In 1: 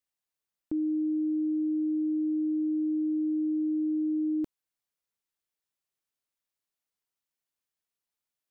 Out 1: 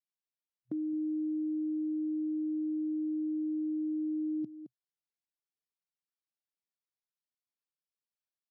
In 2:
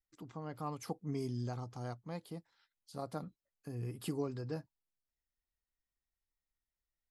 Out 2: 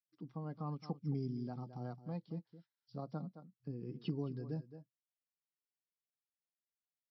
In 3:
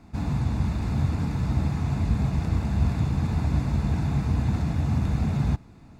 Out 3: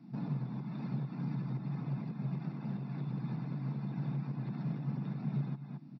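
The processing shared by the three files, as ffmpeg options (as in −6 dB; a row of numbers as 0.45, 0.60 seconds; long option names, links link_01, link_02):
-filter_complex "[0:a]afftdn=noise_reduction=13:noise_floor=-44,bass=frequency=250:gain=4,treble=frequency=4000:gain=4,aecho=1:1:217:0.178,adynamicequalizer=threshold=0.00355:dfrequency=500:dqfactor=2.2:tfrequency=500:tqfactor=2.2:attack=5:release=100:ratio=0.375:range=4:mode=cutabove:tftype=bell,acompressor=threshold=-25dB:ratio=3,alimiter=limit=-24dB:level=0:latency=1:release=487,acrossover=split=250|3000[link_01][link_02][link_03];[link_02]acompressor=threshold=-47dB:ratio=2[link_04];[link_01][link_04][link_03]amix=inputs=3:normalize=0,asoftclip=type=hard:threshold=-26.5dB,afftfilt=real='re*between(b*sr/4096,120,5800)':imag='im*between(b*sr/4096,120,5800)':win_size=4096:overlap=0.75"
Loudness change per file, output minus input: −5.0, −1.0, −12.5 LU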